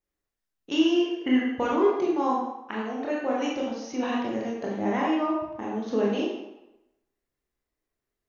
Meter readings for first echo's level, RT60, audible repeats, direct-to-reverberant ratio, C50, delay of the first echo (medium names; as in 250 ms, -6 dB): no echo, 0.95 s, no echo, -4.5 dB, 1.0 dB, no echo